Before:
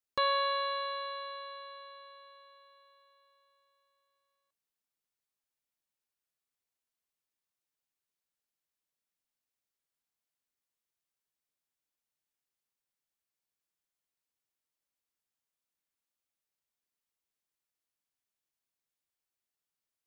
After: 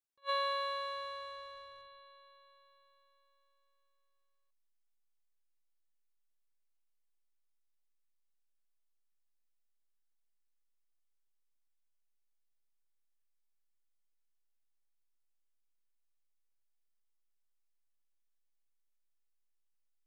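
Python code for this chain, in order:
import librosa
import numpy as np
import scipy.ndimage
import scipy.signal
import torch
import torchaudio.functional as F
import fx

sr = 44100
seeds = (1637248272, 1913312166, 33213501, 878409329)

p1 = fx.backlash(x, sr, play_db=-38.0)
p2 = x + (p1 * librosa.db_to_amplitude(-7.0))
p3 = fx.attack_slew(p2, sr, db_per_s=490.0)
y = p3 * librosa.db_to_amplitude(-6.5)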